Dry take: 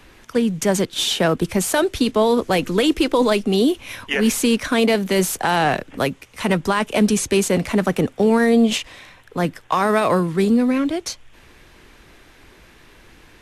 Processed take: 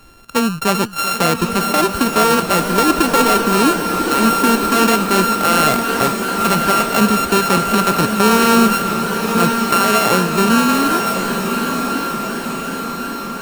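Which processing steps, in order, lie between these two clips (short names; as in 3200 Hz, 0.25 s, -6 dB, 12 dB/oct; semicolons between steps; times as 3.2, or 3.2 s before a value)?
sample sorter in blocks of 32 samples; diffused feedback echo 1.081 s, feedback 59%, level -6 dB; warbling echo 0.388 s, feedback 75%, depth 89 cents, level -14 dB; gain +2 dB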